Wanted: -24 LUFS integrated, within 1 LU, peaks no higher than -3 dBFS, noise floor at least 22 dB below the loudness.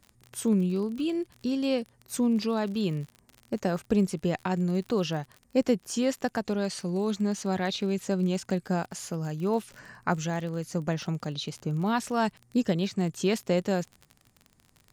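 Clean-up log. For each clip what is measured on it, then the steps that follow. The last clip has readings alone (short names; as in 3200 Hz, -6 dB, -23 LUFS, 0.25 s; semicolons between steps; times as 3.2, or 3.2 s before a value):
ticks 38/s; loudness -29.0 LUFS; peak -11.0 dBFS; loudness target -24.0 LUFS
-> de-click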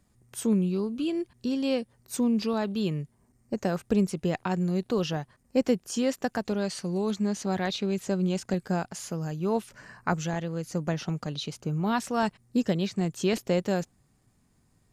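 ticks 0/s; loudness -29.0 LUFS; peak -11.0 dBFS; loudness target -24.0 LUFS
-> gain +5 dB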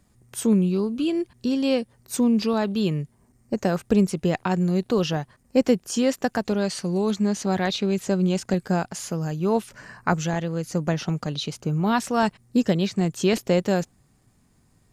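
loudness -24.0 LUFS; peak -6.0 dBFS; noise floor -62 dBFS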